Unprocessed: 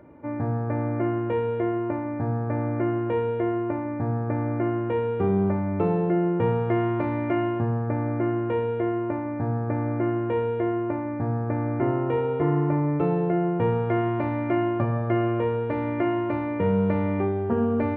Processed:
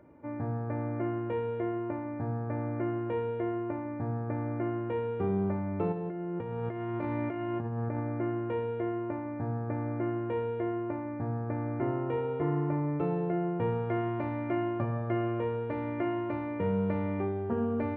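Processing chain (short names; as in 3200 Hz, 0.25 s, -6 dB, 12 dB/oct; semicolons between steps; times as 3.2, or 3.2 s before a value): 5.92–8 negative-ratio compressor -27 dBFS, ratio -1; gain -7 dB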